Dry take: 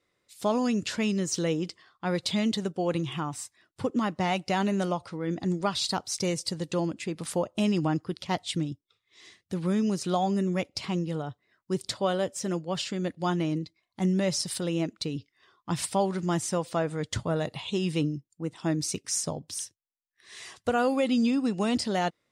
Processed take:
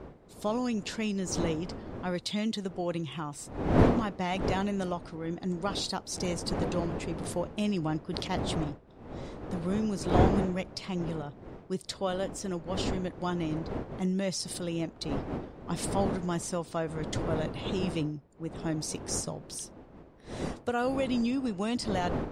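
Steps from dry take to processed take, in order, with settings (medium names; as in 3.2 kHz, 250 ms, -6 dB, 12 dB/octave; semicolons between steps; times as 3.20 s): wind noise 440 Hz -31 dBFS; 8.03–8.64 s: decay stretcher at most 29 dB/s; trim -4.5 dB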